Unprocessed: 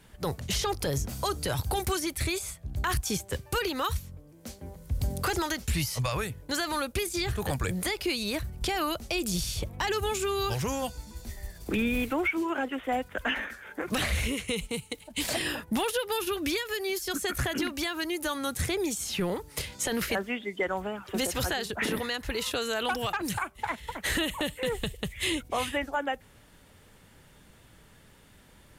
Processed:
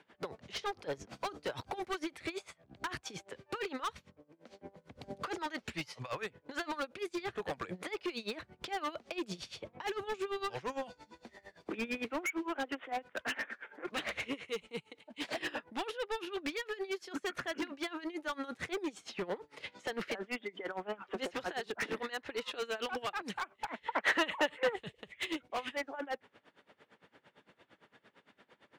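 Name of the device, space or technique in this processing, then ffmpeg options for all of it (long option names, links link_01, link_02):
helicopter radio: -filter_complex "[0:a]highpass=300,lowpass=2900,aeval=exprs='val(0)*pow(10,-22*(0.5-0.5*cos(2*PI*8.8*n/s))/20)':channel_layout=same,asoftclip=type=hard:threshold=-34.5dB,asettb=1/sr,asplit=3[link_01][link_02][link_03];[link_01]atrim=end=23.864[link_04];[link_02]atrim=start=23.86:end=24.76,asetpts=PTS-STARTPTS,afade=type=in:duration=0.004:curve=qsin,afade=type=out:start_time=0.896:duration=0.004:curve=qsin,equalizer=frequency=1200:width=0.44:gain=10.5[link_05];[link_03]atrim=start=24.756[link_06];[link_04][link_05]acrossfade=duration=0.004:curve1=hsin:curve2=qsin[link_07];[link_07][link_06]acrossfade=duration=0.004:curve1=qsin:curve2=hsin,volume=2.5dB"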